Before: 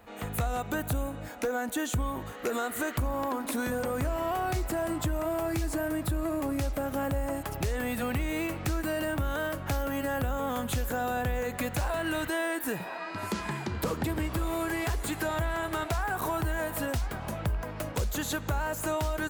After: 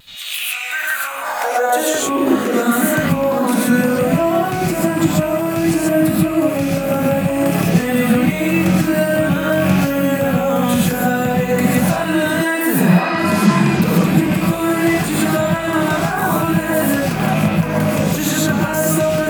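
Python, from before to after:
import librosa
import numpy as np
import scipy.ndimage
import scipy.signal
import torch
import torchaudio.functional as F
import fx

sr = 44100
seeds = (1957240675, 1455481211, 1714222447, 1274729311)

p1 = fx.rattle_buzz(x, sr, strikes_db=-34.0, level_db=-30.0)
p2 = fx.over_compress(p1, sr, threshold_db=-37.0, ratio=-0.5)
p3 = p1 + F.gain(torch.from_numpy(p2), -2.0).numpy()
p4 = fx.filter_sweep_highpass(p3, sr, from_hz=3600.0, to_hz=170.0, start_s=0.2, end_s=2.64, q=4.1)
p5 = fx.vibrato(p4, sr, rate_hz=0.55, depth_cents=16.0)
p6 = fx.rev_gated(p5, sr, seeds[0], gate_ms=160, shape='rising', drr_db=-5.5)
y = F.gain(torch.from_numpy(p6), 4.5).numpy()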